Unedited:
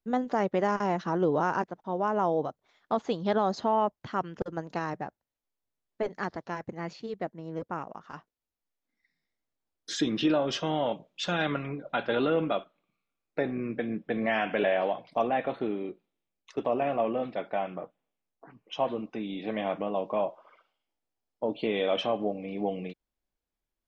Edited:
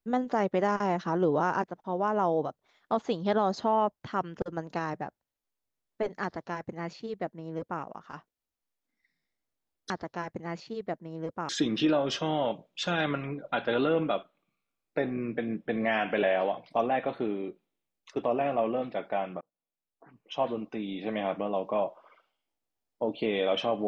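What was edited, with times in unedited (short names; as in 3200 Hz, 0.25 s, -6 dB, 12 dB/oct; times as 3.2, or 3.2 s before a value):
6.23–7.82 copy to 9.9
17.82–18.88 fade in linear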